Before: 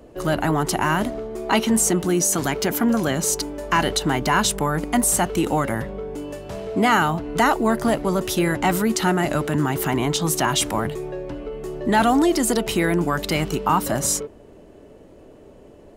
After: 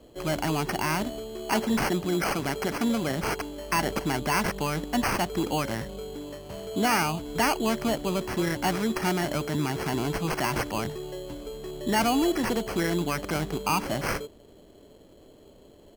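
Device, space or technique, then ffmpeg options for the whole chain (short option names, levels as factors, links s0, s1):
crushed at another speed: -af "asetrate=35280,aresample=44100,acrusher=samples=15:mix=1:aa=0.000001,asetrate=55125,aresample=44100,volume=0.473"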